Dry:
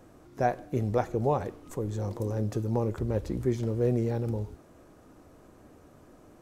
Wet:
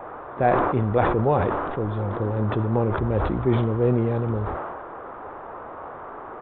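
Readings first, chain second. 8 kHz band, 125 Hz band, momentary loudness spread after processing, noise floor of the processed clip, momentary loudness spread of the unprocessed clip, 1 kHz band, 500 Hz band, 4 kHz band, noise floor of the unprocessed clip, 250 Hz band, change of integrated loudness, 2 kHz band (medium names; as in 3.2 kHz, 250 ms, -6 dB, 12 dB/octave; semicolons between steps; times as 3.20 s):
under -30 dB, +6.5 dB, 17 LU, -38 dBFS, 7 LU, +10.0 dB, +7.0 dB, +7.0 dB, -56 dBFS, +6.5 dB, +7.0 dB, +11.5 dB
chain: band noise 350–1300 Hz -43 dBFS; resampled via 8 kHz; decay stretcher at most 29 dB/s; trim +5 dB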